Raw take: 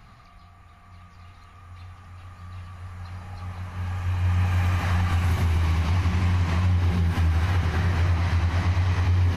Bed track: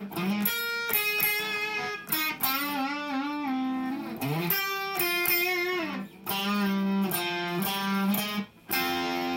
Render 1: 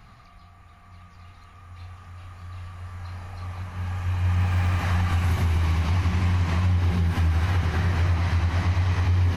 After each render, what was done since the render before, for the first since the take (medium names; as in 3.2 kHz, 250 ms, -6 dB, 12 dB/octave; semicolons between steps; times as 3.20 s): 1.74–3.63 s: doubling 36 ms -5 dB; 4.35–4.79 s: sliding maximum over 3 samples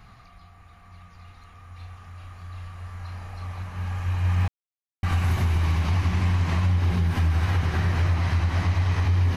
4.48–5.03 s: mute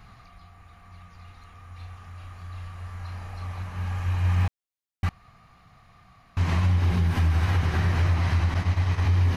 5.09–6.37 s: room tone; 8.54–9.02 s: expander -21 dBFS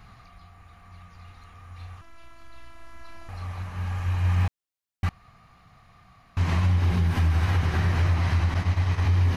2.01–3.29 s: robot voice 333 Hz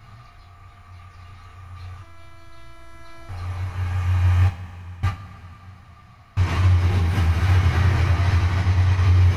two-slope reverb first 0.27 s, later 3.9 s, from -19 dB, DRR -1.5 dB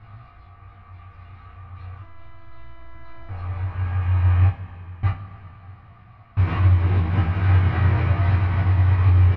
distance through air 410 m; doubling 19 ms -4 dB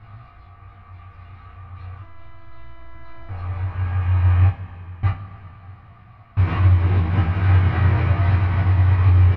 trim +1.5 dB